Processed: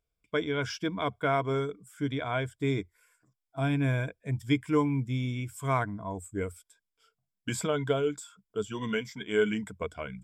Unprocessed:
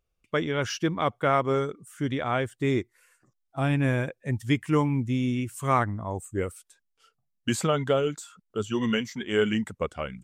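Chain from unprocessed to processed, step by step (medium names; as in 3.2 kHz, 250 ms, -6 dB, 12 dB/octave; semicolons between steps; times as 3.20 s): rippled EQ curve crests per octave 1.7, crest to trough 10 dB; trim -5.5 dB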